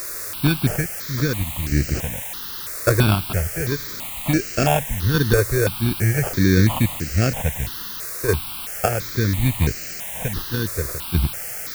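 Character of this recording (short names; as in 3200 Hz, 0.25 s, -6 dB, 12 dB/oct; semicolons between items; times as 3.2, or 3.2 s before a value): aliases and images of a low sample rate 2000 Hz, jitter 0%; random-step tremolo, depth 70%; a quantiser's noise floor 6-bit, dither triangular; notches that jump at a steady rate 3 Hz 830–3500 Hz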